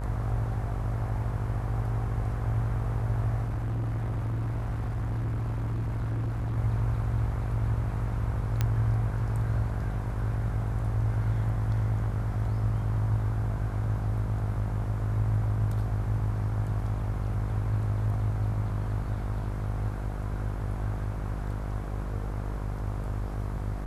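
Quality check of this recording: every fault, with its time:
buzz 50 Hz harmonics 32 -33 dBFS
3.47–6.58 clipped -27 dBFS
8.61 pop -13 dBFS

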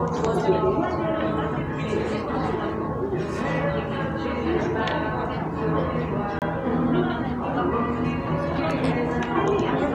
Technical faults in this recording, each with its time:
6.39–6.42 gap 28 ms

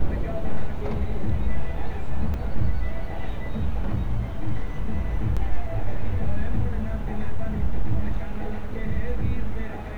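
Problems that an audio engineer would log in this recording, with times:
2.34 gap 2.2 ms
5.36–5.37 gap 6.5 ms

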